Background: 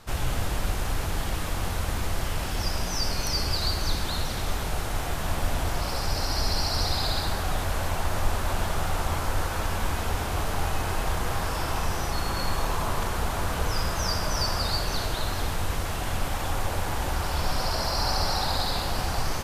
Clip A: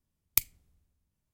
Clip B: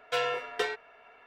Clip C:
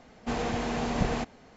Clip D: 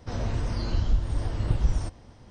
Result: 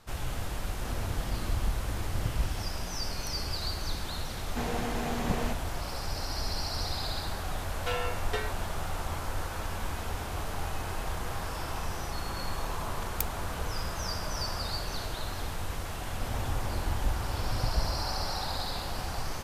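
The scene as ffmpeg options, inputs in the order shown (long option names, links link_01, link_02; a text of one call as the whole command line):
ffmpeg -i bed.wav -i cue0.wav -i cue1.wav -i cue2.wav -i cue3.wav -filter_complex "[4:a]asplit=2[link_01][link_02];[0:a]volume=-7dB[link_03];[link_01]atrim=end=2.3,asetpts=PTS-STARTPTS,volume=-7dB,afade=type=in:duration=0.004:curve=hsin,afade=type=out:start_time=2.296:duration=0.004:curve=hsin,adelay=750[link_04];[3:a]atrim=end=1.56,asetpts=PTS-STARTPTS,volume=-3.5dB,afade=type=in:duration=0.004:curve=hsin,afade=type=out:start_time=1.556:duration=0.004:curve=hsin,adelay=189189S[link_05];[2:a]atrim=end=1.26,asetpts=PTS-STARTPTS,volume=-4dB,afade=type=in:duration=0.004:curve=hsin,afade=type=out:start_time=1.256:duration=0.004:curve=hsin,adelay=7740[link_06];[1:a]atrim=end=1.33,asetpts=PTS-STARTPTS,volume=-8.5dB,afade=type=in:duration=0.004:curve=hsin,afade=type=out:start_time=1.326:duration=0.004:curve=hsin,adelay=12830[link_07];[link_02]atrim=end=2.3,asetpts=PTS-STARTPTS,volume=-7dB,afade=type=in:duration=0.004:curve=hsin,afade=type=out:start_time=2.296:duration=0.004:curve=hsin,adelay=16130[link_08];[link_03][link_04][link_05][link_06][link_07][link_08]amix=inputs=6:normalize=0" out.wav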